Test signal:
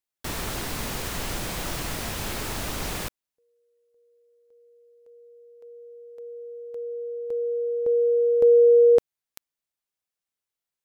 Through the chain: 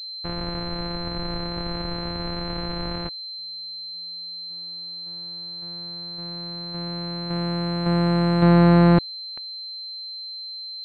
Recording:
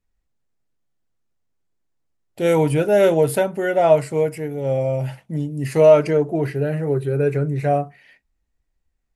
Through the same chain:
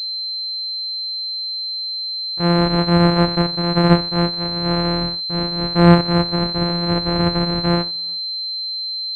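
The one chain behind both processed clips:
samples sorted by size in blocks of 256 samples
switching amplifier with a slow clock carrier 4,100 Hz
level +1 dB

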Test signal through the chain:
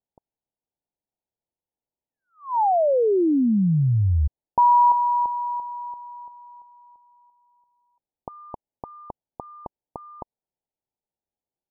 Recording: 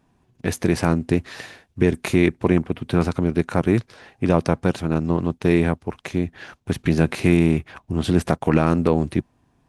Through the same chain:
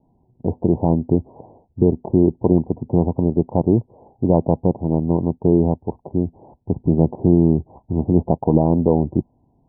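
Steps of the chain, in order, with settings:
Butterworth low-pass 950 Hz 96 dB per octave
level +2.5 dB

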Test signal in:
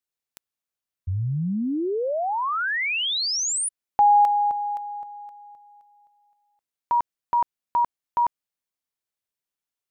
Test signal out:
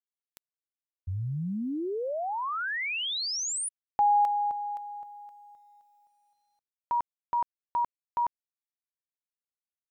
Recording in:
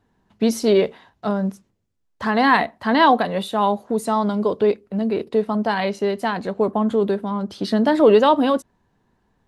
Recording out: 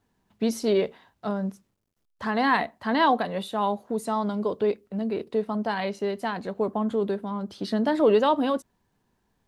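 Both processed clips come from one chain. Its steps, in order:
bit reduction 12 bits
level −6.5 dB

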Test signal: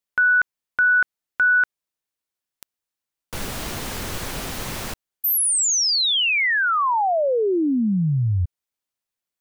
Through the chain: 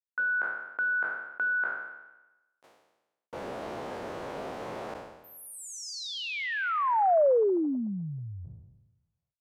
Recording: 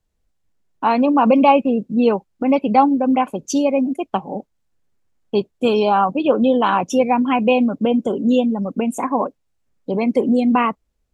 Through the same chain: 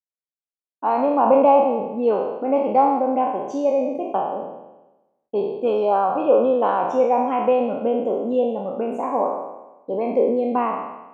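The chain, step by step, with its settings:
peak hold with a decay on every bin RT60 1.04 s
noise gate with hold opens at −43 dBFS, hold 380 ms, range −27 dB
resonant band-pass 580 Hz, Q 1.3
level −2 dB

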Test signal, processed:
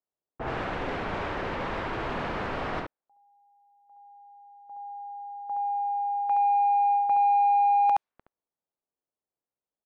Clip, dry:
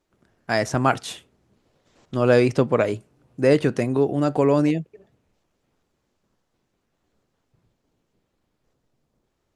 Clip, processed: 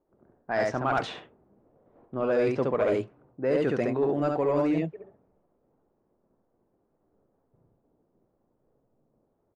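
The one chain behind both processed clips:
single-tap delay 70 ms −3.5 dB
reversed playback
downward compressor 6 to 1, threshold −24 dBFS
reversed playback
mid-hump overdrive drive 14 dB, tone 1,000 Hz, clips at −11.5 dBFS
low-pass that shuts in the quiet parts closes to 670 Hz, open at −20 dBFS

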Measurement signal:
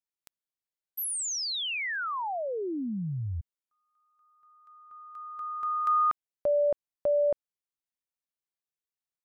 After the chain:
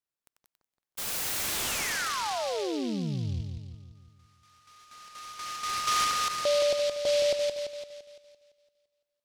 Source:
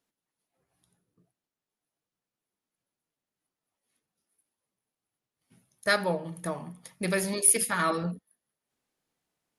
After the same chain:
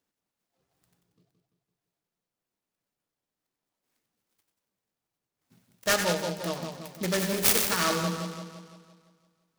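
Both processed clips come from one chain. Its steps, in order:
on a send: echo with a time of its own for lows and highs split 1,400 Hz, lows 170 ms, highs 93 ms, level −5.5 dB
on the sum: short delay modulated by noise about 3,700 Hz, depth 0.085 ms

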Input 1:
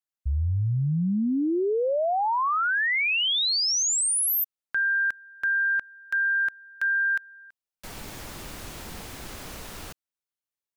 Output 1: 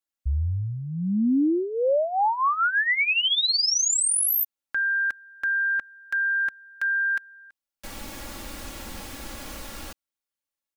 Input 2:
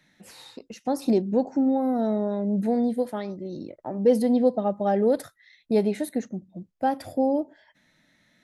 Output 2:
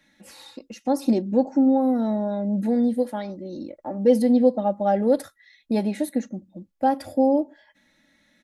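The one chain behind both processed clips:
comb filter 3.6 ms, depth 62%

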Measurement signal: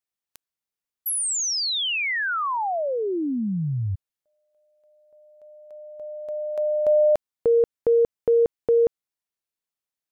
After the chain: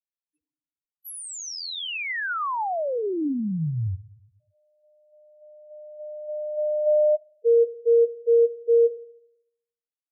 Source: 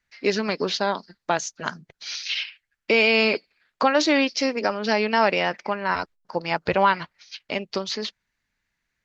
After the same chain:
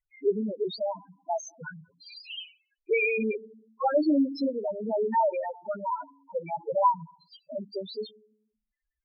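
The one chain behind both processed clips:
feedback delay network reverb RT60 0.8 s, low-frequency decay 1.35×, high-frequency decay 0.65×, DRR 16 dB
spectral peaks only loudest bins 2

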